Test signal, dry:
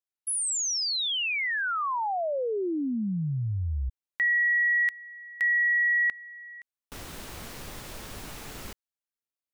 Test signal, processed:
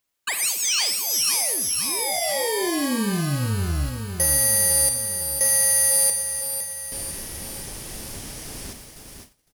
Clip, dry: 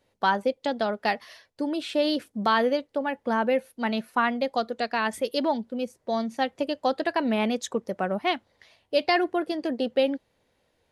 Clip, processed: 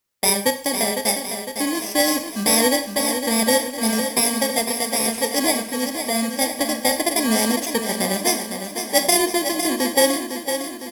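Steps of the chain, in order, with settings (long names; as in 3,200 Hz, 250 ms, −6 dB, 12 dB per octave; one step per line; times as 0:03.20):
samples in bit-reversed order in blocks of 32 samples
low-pass filter 10,000 Hz 12 dB per octave
high-shelf EQ 4,600 Hz +5.5 dB
floating-point word with a short mantissa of 2 bits
harmonic generator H 7 −29 dB, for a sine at −8.5 dBFS
bit-depth reduction 10 bits, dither triangular
on a send: repeating echo 506 ms, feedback 57%, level −8 dB
on the sum: four-comb reverb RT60 0.51 s, combs from 28 ms, DRR 8.5 dB
noise gate −49 dBFS, range −25 dB
level +6.5 dB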